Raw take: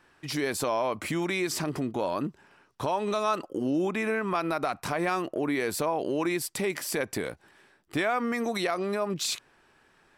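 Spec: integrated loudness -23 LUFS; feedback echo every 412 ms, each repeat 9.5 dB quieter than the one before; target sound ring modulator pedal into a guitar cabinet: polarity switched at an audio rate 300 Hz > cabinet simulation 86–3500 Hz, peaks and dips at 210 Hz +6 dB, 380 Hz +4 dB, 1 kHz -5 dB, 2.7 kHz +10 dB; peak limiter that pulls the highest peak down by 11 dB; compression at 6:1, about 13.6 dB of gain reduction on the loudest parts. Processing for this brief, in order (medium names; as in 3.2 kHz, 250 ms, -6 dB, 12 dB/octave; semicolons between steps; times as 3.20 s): compression 6:1, threshold -39 dBFS; peak limiter -38 dBFS; feedback delay 412 ms, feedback 33%, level -9.5 dB; polarity switched at an audio rate 300 Hz; cabinet simulation 86–3500 Hz, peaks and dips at 210 Hz +6 dB, 380 Hz +4 dB, 1 kHz -5 dB, 2.7 kHz +10 dB; trim +23.5 dB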